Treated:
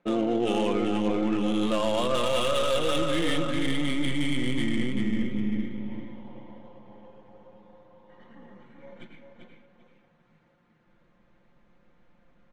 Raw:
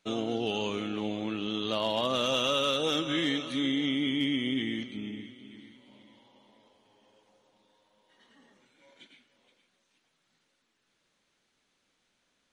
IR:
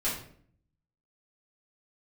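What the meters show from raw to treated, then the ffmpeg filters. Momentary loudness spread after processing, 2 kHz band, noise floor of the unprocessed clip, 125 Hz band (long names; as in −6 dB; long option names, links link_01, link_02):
9 LU, +2.0 dB, −76 dBFS, +7.5 dB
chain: -filter_complex "[0:a]aeval=exprs='if(lt(val(0),0),0.708*val(0),val(0))':channel_layout=same,aecho=1:1:5.7:0.52,asplit=2[link_01][link_02];[link_02]aecho=0:1:393|786|1179|1572:0.596|0.155|0.0403|0.0105[link_03];[link_01][link_03]amix=inputs=2:normalize=0,adynamicsmooth=sensitivity=4.5:basefreq=1500,equalizer=frequency=250:width_type=o:width=1:gain=8,equalizer=frequency=500:width_type=o:width=1:gain=7,equalizer=frequency=1000:width_type=o:width=1:gain=5,equalizer=frequency=2000:width_type=o:width=1:gain=5,equalizer=frequency=8000:width_type=o:width=1:gain=9,aeval=exprs='0.447*sin(PI/2*1.41*val(0)/0.447)':channel_layout=same,asubboost=boost=7:cutoff=120,areverse,acompressor=threshold=-22dB:ratio=6,areverse"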